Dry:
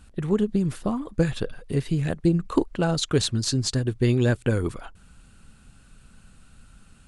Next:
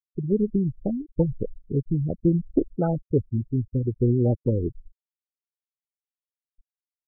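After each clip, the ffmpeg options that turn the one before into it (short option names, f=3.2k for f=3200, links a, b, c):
-af "afwtdn=0.0562,afftfilt=real='re*gte(hypot(re,im),0.1)':imag='im*gte(hypot(re,im),0.1)':win_size=1024:overlap=0.75"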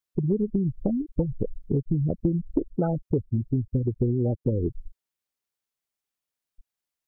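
-af "acompressor=threshold=-29dB:ratio=6,volume=7.5dB"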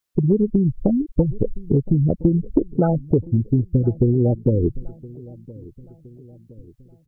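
-filter_complex "[0:a]asplit=2[a][b];[b]adelay=1017,lowpass=f=1.1k:p=1,volume=-21dB,asplit=2[c][d];[d]adelay=1017,lowpass=f=1.1k:p=1,volume=0.52,asplit=2[e][f];[f]adelay=1017,lowpass=f=1.1k:p=1,volume=0.52,asplit=2[g][h];[h]adelay=1017,lowpass=f=1.1k:p=1,volume=0.52[i];[a][c][e][g][i]amix=inputs=5:normalize=0,volume=7dB"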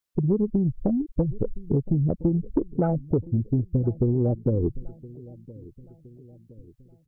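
-af "asoftclip=type=tanh:threshold=-6dB,volume=-4.5dB"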